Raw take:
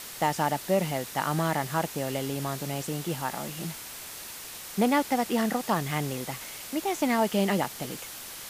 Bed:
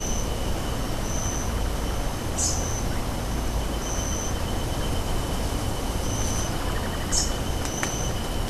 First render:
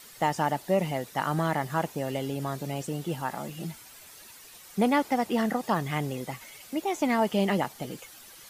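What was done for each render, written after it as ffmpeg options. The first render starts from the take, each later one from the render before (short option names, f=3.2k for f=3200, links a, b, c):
-af "afftdn=nr=11:nf=-41"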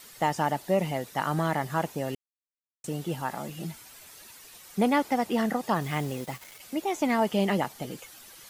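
-filter_complex "[0:a]asettb=1/sr,asplit=3[a][b][c];[a]atrim=end=5.814[d];[b]atrim=start=5.81:end=6.6,asetpts=PTS-STARTPTS,afade=t=in:d=0.004:c=qsin,afade=t=out:st=0.786:d=0.004:c=qsin,acrusher=bits=6:mix=0:aa=0.5[e];[c]atrim=start=6.596[f];[d][e]acrossfade=d=0.004:c1=hsin:c2=qsin[g];[g][f]acrossfade=d=0.004:c1=qsin:c2=hsin,asplit=3[h][i][j];[h]atrim=end=2.15,asetpts=PTS-STARTPTS,afade=t=out:st=2.146:d=0.004:c=hsin[k];[i]atrim=start=2.15:end=2.84,asetpts=PTS-STARTPTS,volume=0[l];[j]atrim=start=2.84,asetpts=PTS-STARTPTS,afade=t=in:d=0.004:c=hsin[m];[k][l][m]concat=n=3:v=0:a=1"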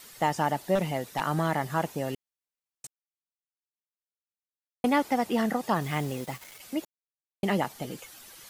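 -filter_complex "[0:a]asettb=1/sr,asplit=3[a][b][c];[a]atrim=end=0.754[d];[b]atrim=start=0.75:end=1.21,asetpts=PTS-STARTPTS,afade=t=in:d=0.004:c=qsin,afade=t=out:st=0.456:d=0.004:c=qsin,aeval=exprs='0.112*(abs(mod(val(0)/0.112+3,4)-2)-1)':c=same[e];[c]atrim=start=1.206[f];[d][e]acrossfade=d=0.004:c1=hsin:c2=qsin[g];[g][f]acrossfade=d=0.004:c1=qsin:c2=hsin,asplit=5[h][i][j][k][l];[h]atrim=end=2.87,asetpts=PTS-STARTPTS,afade=t=out:st=2.866:d=0.004:c=hsin[m];[i]atrim=start=2.87:end=4.84,asetpts=PTS-STARTPTS,volume=0[n];[j]atrim=start=4.84:end=6.85,asetpts=PTS-STARTPTS,afade=t=in:d=0.004:c=hsin,afade=t=out:st=2.006:d=0.004:c=hsin[o];[k]atrim=start=6.85:end=7.43,asetpts=PTS-STARTPTS,volume=0[p];[l]atrim=start=7.43,asetpts=PTS-STARTPTS,afade=t=in:d=0.004:c=hsin[q];[m][n][o][p][q]concat=n=5:v=0:a=1"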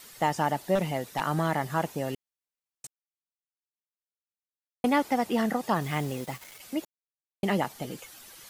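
-af anull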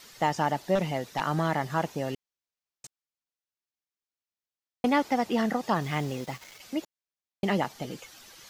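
-af "highshelf=f=7.5k:t=q:w=1.5:g=-6"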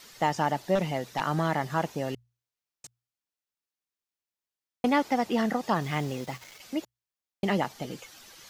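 -af "bandreject=f=60:t=h:w=6,bandreject=f=120:t=h:w=6"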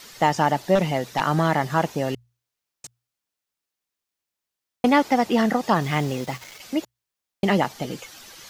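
-af "volume=6.5dB"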